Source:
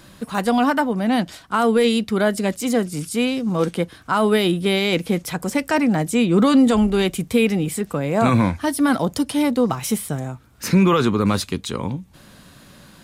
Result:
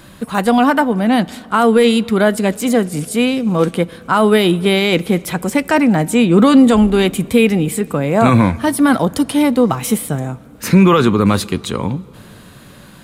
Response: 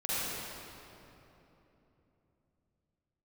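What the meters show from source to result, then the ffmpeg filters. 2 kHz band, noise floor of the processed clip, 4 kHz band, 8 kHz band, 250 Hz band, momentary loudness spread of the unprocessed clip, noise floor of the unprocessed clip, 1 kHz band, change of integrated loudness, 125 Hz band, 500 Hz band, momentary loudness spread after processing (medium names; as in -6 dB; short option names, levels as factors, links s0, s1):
+5.5 dB, -40 dBFS, +4.5 dB, +4.0 dB, +5.5 dB, 9 LU, -48 dBFS, +5.5 dB, +5.5 dB, +5.5 dB, +5.5 dB, 9 LU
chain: -filter_complex "[0:a]equalizer=f=5400:t=o:w=0.64:g=-5.5,asplit=2[s0][s1];[1:a]atrim=start_sample=2205,lowpass=8000[s2];[s1][s2]afir=irnorm=-1:irlink=0,volume=0.0316[s3];[s0][s3]amix=inputs=2:normalize=0,volume=1.88"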